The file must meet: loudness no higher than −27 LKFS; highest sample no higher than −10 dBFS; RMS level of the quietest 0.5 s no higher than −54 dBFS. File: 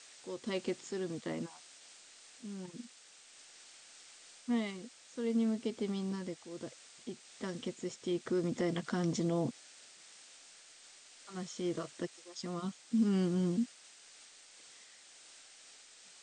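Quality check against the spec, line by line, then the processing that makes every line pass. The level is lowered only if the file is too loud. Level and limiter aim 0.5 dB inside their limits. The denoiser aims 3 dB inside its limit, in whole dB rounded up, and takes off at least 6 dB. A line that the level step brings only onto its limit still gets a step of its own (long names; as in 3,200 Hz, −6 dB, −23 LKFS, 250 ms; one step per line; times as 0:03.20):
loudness −37.0 LKFS: in spec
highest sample −21.0 dBFS: in spec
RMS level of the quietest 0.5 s −59 dBFS: in spec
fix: no processing needed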